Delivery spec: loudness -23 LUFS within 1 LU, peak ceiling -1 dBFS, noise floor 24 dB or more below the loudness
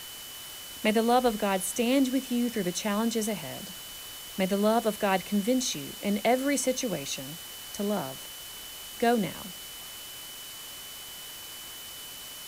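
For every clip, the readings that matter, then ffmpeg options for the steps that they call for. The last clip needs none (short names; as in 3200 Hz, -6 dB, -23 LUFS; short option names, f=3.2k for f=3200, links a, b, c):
steady tone 3000 Hz; tone level -45 dBFS; noise floor -43 dBFS; noise floor target -54 dBFS; loudness -30.0 LUFS; peak -12.5 dBFS; loudness target -23.0 LUFS
-> -af "bandreject=f=3k:w=30"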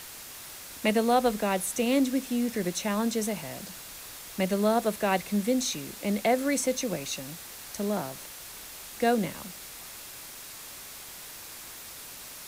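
steady tone none; noise floor -44 dBFS; noise floor target -53 dBFS
-> -af "afftdn=nr=9:nf=-44"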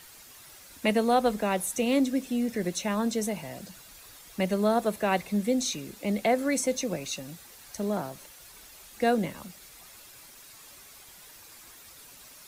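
noise floor -51 dBFS; noise floor target -52 dBFS
-> -af "afftdn=nr=6:nf=-51"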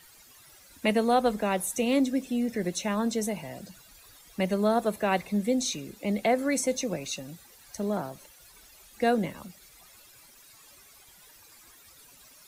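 noise floor -55 dBFS; loudness -28.0 LUFS; peak -13.0 dBFS; loudness target -23.0 LUFS
-> -af "volume=5dB"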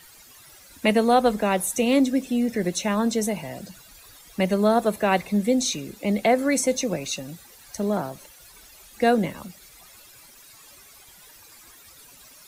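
loudness -23.0 LUFS; peak -8.0 dBFS; noise floor -50 dBFS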